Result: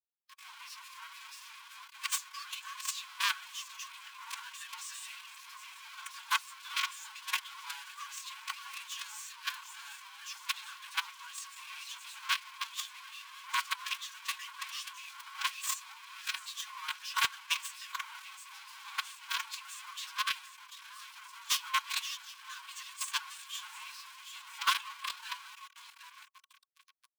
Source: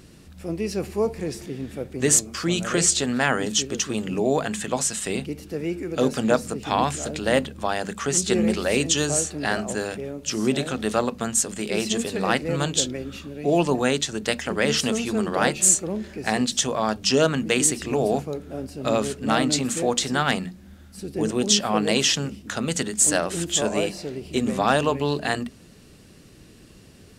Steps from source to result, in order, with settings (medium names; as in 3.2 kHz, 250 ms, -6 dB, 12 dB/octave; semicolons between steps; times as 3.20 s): octave divider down 2 oct, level +3 dB; feedback delay 741 ms, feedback 42%, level -19 dB; flange 0.36 Hz, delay 6.5 ms, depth 8.3 ms, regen -21%; companded quantiser 2-bit; rippled Chebyshev high-pass 760 Hz, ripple 6 dB; treble shelf 8 kHz -4.5 dB; one-sided clip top -6.5 dBFS, bottom -5.5 dBFS; formant-preserving pitch shift +6 st; upward expansion 1.5:1, over -31 dBFS; trim -4 dB